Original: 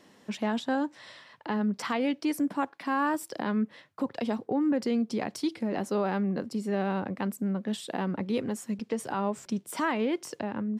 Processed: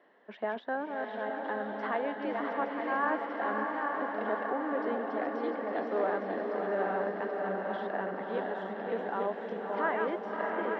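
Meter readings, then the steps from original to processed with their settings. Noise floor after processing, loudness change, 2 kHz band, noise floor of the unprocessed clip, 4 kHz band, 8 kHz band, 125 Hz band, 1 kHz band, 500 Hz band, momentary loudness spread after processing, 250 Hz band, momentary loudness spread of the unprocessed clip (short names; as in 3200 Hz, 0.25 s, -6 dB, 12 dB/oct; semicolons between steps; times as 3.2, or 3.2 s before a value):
-43 dBFS, -2.5 dB, +2.0 dB, -60 dBFS, -11.0 dB, under -30 dB, under -10 dB, +1.0 dB, +1.5 dB, 5 LU, -9.5 dB, 7 LU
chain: regenerating reverse delay 0.432 s, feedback 66%, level -4 dB; speaker cabinet 420–2700 Hz, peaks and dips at 420 Hz +4 dB, 660 Hz +6 dB, 1700 Hz +5 dB, 2500 Hz -9 dB; diffused feedback echo 0.592 s, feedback 60%, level -4 dB; gain -4.5 dB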